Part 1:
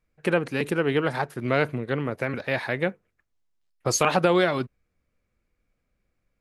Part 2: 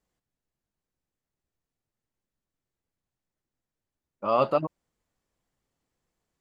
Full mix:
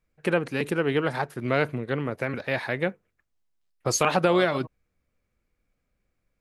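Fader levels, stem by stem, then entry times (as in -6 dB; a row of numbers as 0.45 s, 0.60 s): -1.0 dB, -13.5 dB; 0.00 s, 0.00 s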